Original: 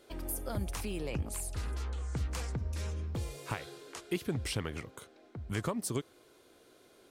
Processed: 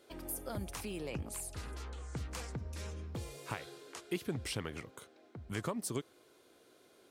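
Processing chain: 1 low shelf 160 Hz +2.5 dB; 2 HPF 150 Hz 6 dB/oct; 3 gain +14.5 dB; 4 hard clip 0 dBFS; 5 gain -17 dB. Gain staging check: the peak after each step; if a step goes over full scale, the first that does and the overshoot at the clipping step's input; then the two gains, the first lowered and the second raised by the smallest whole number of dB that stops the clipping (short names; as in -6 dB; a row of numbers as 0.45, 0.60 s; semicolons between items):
-20.5, -19.5, -5.0, -5.0, -22.0 dBFS; no overload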